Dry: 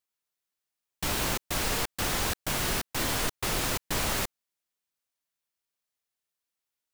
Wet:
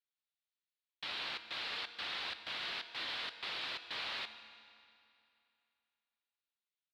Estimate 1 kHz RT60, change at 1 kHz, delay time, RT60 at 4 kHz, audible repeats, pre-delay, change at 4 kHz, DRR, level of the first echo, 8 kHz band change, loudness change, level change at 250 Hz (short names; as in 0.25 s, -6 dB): 2.7 s, -12.5 dB, 0.149 s, 2.3 s, 2, 4 ms, -5.5 dB, 10.0 dB, -19.5 dB, -30.0 dB, -10.5 dB, -23.0 dB